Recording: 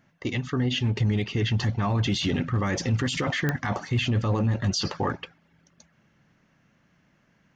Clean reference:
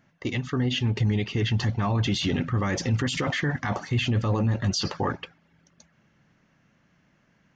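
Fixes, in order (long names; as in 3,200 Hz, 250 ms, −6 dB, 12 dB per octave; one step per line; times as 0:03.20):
clipped peaks rebuilt −17 dBFS
click removal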